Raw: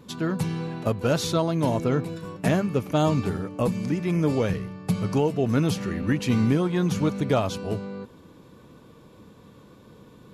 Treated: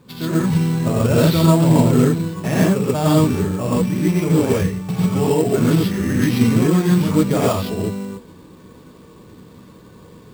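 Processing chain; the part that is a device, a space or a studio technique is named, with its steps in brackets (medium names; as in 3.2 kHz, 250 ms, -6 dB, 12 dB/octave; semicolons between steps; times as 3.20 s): low-pass 5.6 kHz 24 dB/octave; 0.70–2.18 s: bass shelf 250 Hz +5.5 dB; gated-style reverb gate 160 ms rising, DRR -7 dB; early companding sampler (sample-rate reducer 8.1 kHz, jitter 0%; companded quantiser 6-bit); trim -1.5 dB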